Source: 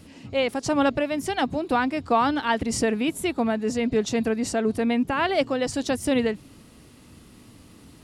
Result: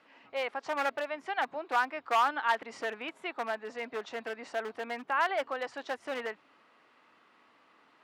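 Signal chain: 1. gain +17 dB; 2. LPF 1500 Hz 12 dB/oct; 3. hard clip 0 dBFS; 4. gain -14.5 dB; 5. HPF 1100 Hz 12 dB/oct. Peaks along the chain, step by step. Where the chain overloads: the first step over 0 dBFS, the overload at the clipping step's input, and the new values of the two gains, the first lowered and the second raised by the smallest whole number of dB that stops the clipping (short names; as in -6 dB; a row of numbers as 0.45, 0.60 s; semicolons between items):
+8.0, +7.0, 0.0, -14.5, -15.5 dBFS; step 1, 7.0 dB; step 1 +10 dB, step 4 -7.5 dB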